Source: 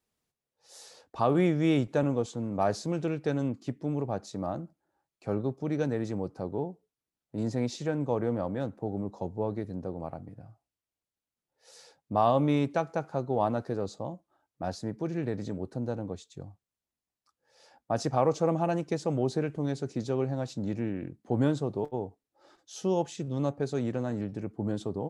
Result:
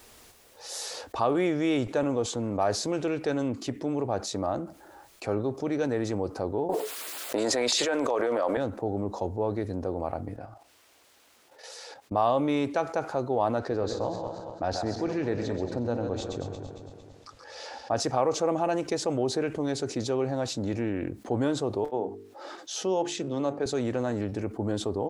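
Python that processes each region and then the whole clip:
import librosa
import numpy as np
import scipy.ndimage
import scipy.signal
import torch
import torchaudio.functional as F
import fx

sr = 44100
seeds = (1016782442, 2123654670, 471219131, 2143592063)

y = fx.chain(x, sr, fx.highpass(hz=540.0, slope=12),
    fx.filter_lfo_notch(shape='square', hz=9.2, low_hz=830.0, high_hz=5800.0, q=2.6),
    fx.env_flatten(amount_pct=100), at=(6.69, 8.57))
y = fx.chain(y, sr, fx.highpass(hz=280.0, slope=6),
    fx.high_shelf(hz=7100.0, db=-9.0),
    fx.level_steps(step_db=11), at=(10.36, 12.12))
y = fx.chain(y, sr, fx.reverse_delay_fb(ms=114, feedback_pct=54, wet_db=-9),
    fx.lowpass(hz=5900.0, slope=12),
    fx.echo_single(ms=128, db=-13.5), at=(13.59, 18.0))
y = fx.chain(y, sr, fx.highpass(hz=140.0, slope=24),
    fx.high_shelf(hz=7700.0, db=-9.5),
    fx.hum_notches(base_hz=50, count=9), at=(21.89, 23.66))
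y = fx.peak_eq(y, sr, hz=160.0, db=-12.5, octaves=0.95)
y = fx.env_flatten(y, sr, amount_pct=50)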